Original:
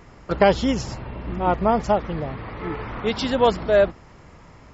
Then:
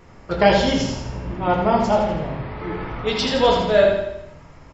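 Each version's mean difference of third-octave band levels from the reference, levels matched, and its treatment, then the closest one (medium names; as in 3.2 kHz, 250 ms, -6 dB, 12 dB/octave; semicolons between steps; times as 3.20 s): 3.5 dB: dynamic bell 4 kHz, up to +7 dB, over -39 dBFS, Q 0.7; vibrato 7.3 Hz 24 cents; on a send: feedback delay 82 ms, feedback 50%, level -6 dB; on the sum: simulated room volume 70 m³, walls mixed, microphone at 0.64 m; trim -3 dB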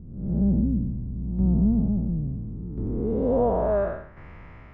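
10.5 dB: spectral blur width 262 ms; bass shelf 120 Hz +10 dB; low-pass sweep 210 Hz -> 2.2 kHz, 2.65–4.28 s; tremolo saw down 0.72 Hz, depth 55%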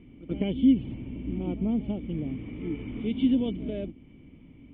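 8.0 dB: dynamic bell 1.4 kHz, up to -5 dB, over -31 dBFS, Q 0.75; reverse echo 87 ms -17 dB; in parallel at +1 dB: compression, threshold -23 dBFS, peak gain reduction 10 dB; on the sum: cascade formant filter i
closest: first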